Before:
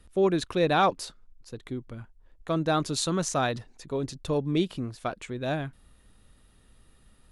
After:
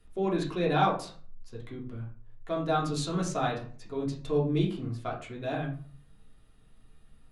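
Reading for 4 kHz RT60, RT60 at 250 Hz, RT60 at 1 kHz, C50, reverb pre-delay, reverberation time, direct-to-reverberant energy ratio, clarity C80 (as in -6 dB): 0.30 s, 0.55 s, 0.45 s, 8.0 dB, 3 ms, 0.45 s, -4.0 dB, 13.0 dB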